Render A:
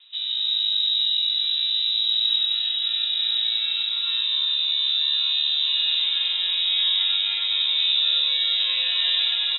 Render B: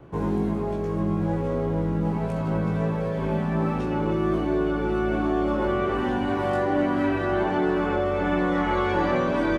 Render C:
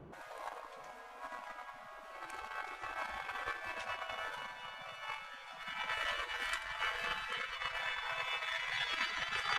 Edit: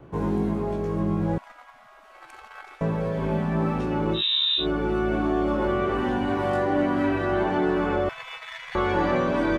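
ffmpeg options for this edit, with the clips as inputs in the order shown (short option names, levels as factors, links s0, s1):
-filter_complex "[2:a]asplit=2[s0][s1];[1:a]asplit=4[s2][s3][s4][s5];[s2]atrim=end=1.382[s6];[s0]atrim=start=1.378:end=2.812[s7];[s3]atrim=start=2.808:end=4.23[s8];[0:a]atrim=start=4.13:end=4.67[s9];[s4]atrim=start=4.57:end=8.092[s10];[s1]atrim=start=8.088:end=8.752[s11];[s5]atrim=start=8.748[s12];[s6][s7]acrossfade=d=0.004:c1=hsin:c2=hsin[s13];[s13][s8]acrossfade=d=0.004:c1=hsin:c2=hsin[s14];[s14][s9]acrossfade=d=0.1:c1=tri:c2=tri[s15];[s15][s10]acrossfade=d=0.1:c1=tri:c2=tri[s16];[s16][s11]acrossfade=d=0.004:c1=hsin:c2=hsin[s17];[s17][s12]acrossfade=d=0.004:c1=hsin:c2=hsin"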